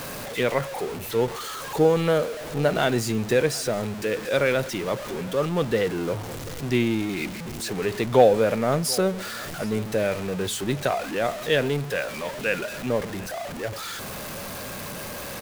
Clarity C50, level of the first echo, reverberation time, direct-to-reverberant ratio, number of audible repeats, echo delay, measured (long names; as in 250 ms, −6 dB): no reverb audible, −20.5 dB, no reverb audible, no reverb audible, 1, 735 ms